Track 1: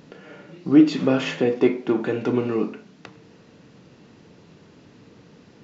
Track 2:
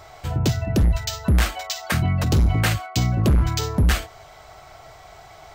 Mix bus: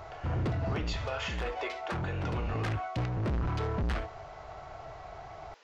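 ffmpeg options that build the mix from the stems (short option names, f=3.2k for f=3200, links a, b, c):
-filter_complex "[0:a]highpass=f=630:w=0.5412,highpass=f=630:w=1.3066,volume=-2dB[a];[1:a]lowpass=1.5k,asoftclip=type=tanh:threshold=-29dB,volume=0.5dB[b];[a][b]amix=inputs=2:normalize=0,alimiter=level_in=1dB:limit=-24dB:level=0:latency=1:release=269,volume=-1dB"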